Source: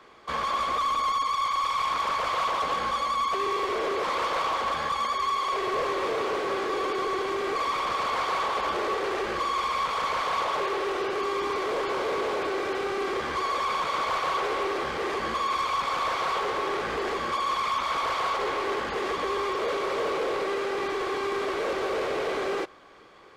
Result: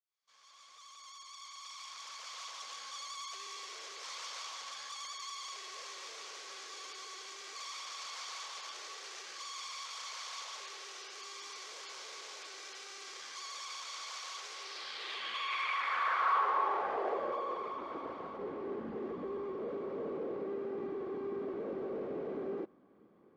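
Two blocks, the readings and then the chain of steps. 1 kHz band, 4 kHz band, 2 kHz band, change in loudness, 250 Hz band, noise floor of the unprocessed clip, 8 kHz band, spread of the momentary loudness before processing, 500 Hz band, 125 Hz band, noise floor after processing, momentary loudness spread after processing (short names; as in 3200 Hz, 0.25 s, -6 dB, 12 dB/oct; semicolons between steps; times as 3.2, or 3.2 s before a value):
-13.5 dB, -8.5 dB, -12.0 dB, -12.0 dB, -10.0 dB, -32 dBFS, -2.5 dB, 3 LU, -13.0 dB, under -10 dB, -61 dBFS, 12 LU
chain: opening faded in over 3.15 s; band-pass sweep 6100 Hz -> 220 Hz, 14.52–18.34; gain +1.5 dB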